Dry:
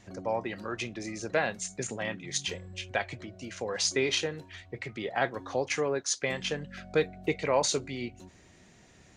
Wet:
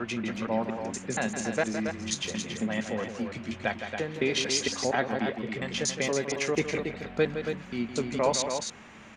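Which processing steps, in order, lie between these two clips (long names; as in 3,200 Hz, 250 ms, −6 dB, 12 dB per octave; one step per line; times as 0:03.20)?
slices reordered back to front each 234 ms, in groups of 4
parametric band 220 Hz +13.5 dB 0.34 octaves
noise in a band 280–2,600 Hz −53 dBFS
on a send: loudspeakers that aren't time-aligned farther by 56 metres −9 dB, 95 metres −7 dB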